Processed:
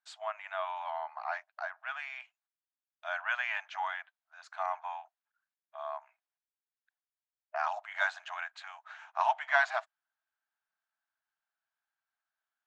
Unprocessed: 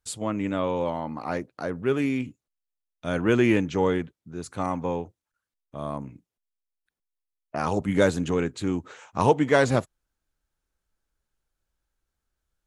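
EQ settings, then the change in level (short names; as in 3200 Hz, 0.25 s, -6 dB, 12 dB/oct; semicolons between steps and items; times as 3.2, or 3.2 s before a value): brick-wall FIR high-pass 620 Hz; air absorption 190 m; bell 1600 Hz +6.5 dB 0.31 oct; -3.0 dB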